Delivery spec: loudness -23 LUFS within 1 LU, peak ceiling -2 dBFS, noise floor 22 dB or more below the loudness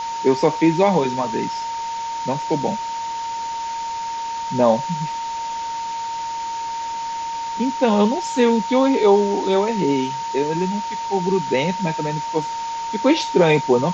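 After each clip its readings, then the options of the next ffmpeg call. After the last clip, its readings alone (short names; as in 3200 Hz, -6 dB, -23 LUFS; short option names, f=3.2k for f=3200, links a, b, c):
steady tone 920 Hz; tone level -24 dBFS; noise floor -27 dBFS; noise floor target -43 dBFS; loudness -21.0 LUFS; peak -3.0 dBFS; loudness target -23.0 LUFS
-> -af "bandreject=f=920:w=30"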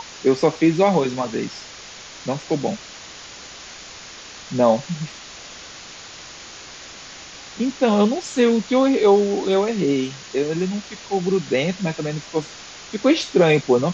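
steady tone none; noise floor -39 dBFS; noise floor target -43 dBFS
-> -af "afftdn=nr=6:nf=-39"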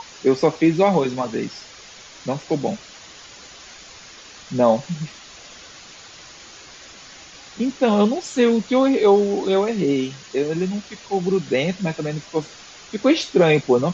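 noise floor -43 dBFS; loudness -20.5 LUFS; peak -4.0 dBFS; loudness target -23.0 LUFS
-> -af "volume=-2.5dB"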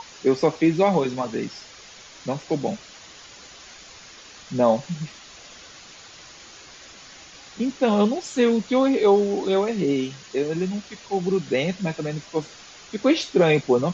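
loudness -23.0 LUFS; peak -6.5 dBFS; noise floor -45 dBFS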